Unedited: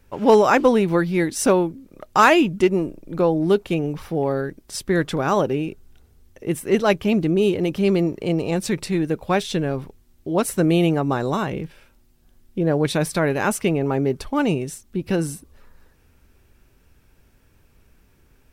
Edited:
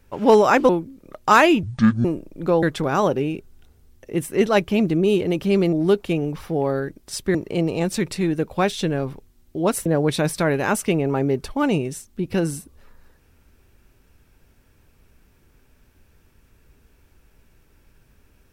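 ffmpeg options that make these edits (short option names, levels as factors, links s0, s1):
-filter_complex "[0:a]asplit=8[s0][s1][s2][s3][s4][s5][s6][s7];[s0]atrim=end=0.692[s8];[s1]atrim=start=1.568:end=2.514[s9];[s2]atrim=start=2.51:end=2.76,asetpts=PTS-STARTPTS,asetrate=26460,aresample=44100[s10];[s3]atrim=start=2.756:end=3.342[s11];[s4]atrim=start=4.958:end=8.062[s12];[s5]atrim=start=3.338:end=4.962[s13];[s6]atrim=start=8.058:end=10.572[s14];[s7]atrim=start=12.618[s15];[s8][s9]acrossfade=d=0.004:c1=hsin:c2=hsin[s16];[s16][s10]acrossfade=d=0.004:c1=hsin:c2=hsin[s17];[s17][s11]acrossfade=d=0.004:c1=hsin:c2=hsin[s18];[s18][s12]acrossfade=d=0.004:c1=hsin:c2=hsin[s19];[s19][s13]acrossfade=d=0.004:c1=hsin:c2=hsin[s20];[s20][s14]acrossfade=d=0.004:c1=hsin:c2=hsin[s21];[s21][s15]acrossfade=d=0.004:c1=hsin:c2=hsin"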